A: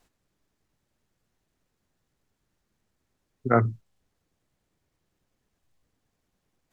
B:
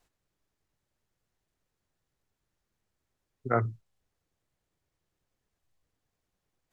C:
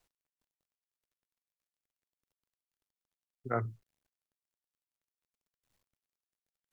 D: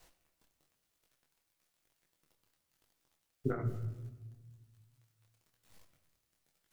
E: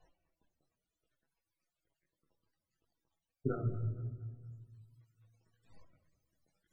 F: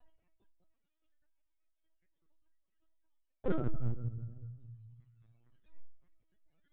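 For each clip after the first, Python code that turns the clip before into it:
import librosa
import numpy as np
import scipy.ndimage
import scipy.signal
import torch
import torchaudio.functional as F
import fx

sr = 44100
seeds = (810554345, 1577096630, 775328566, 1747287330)

y1 = fx.peak_eq(x, sr, hz=230.0, db=-5.0, octaves=0.88)
y1 = y1 * librosa.db_to_amplitude(-5.0)
y2 = fx.quant_dither(y1, sr, seeds[0], bits=12, dither='none')
y2 = y2 * librosa.db_to_amplitude(-6.0)
y3 = fx.over_compress(y2, sr, threshold_db=-39.0, ratio=-0.5)
y3 = fx.room_shoebox(y3, sr, seeds[1], volume_m3=800.0, walls='mixed', distance_m=0.65)
y3 = fx.detune_double(y3, sr, cents=36)
y3 = y3 * librosa.db_to_amplitude(11.5)
y4 = fx.spec_topn(y3, sr, count=32)
y4 = fx.rider(y4, sr, range_db=3, speed_s=0.5)
y4 = fx.echo_feedback(y4, sr, ms=232, feedback_pct=51, wet_db=-21)
y4 = y4 * librosa.db_to_amplitude(2.0)
y5 = np.minimum(y4, 2.0 * 10.0 ** (-34.0 / 20.0) - y4)
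y5 = fx.room_shoebox(y5, sr, seeds[2], volume_m3=330.0, walls='furnished', distance_m=0.89)
y5 = fx.lpc_vocoder(y5, sr, seeds[3], excitation='pitch_kept', order=16)
y5 = y5 * librosa.db_to_amplitude(1.5)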